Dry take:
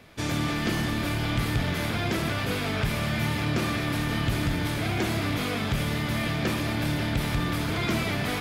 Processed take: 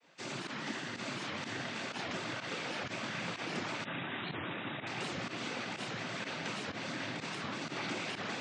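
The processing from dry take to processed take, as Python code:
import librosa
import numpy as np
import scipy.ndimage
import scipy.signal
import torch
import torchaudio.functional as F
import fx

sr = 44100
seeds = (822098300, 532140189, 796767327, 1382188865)

p1 = fx.noise_vocoder(x, sr, seeds[0], bands=16)
p2 = scipy.signal.sosfilt(scipy.signal.bessel(2, 300.0, 'highpass', norm='mag', fs=sr, output='sos'), p1)
p3 = fx.peak_eq(p2, sr, hz=390.0, db=-3.5, octaves=0.63)
p4 = p3 + fx.echo_single(p3, sr, ms=762, db=-3.5, dry=0)
p5 = fx.volume_shaper(p4, sr, bpm=125, per_beat=1, depth_db=-15, release_ms=61.0, shape='fast start')
p6 = fx.brickwall_lowpass(p5, sr, high_hz=3900.0, at=(3.85, 4.87))
p7 = fx.record_warp(p6, sr, rpm=78.0, depth_cents=250.0)
y = F.gain(torch.from_numpy(p7), -8.5).numpy()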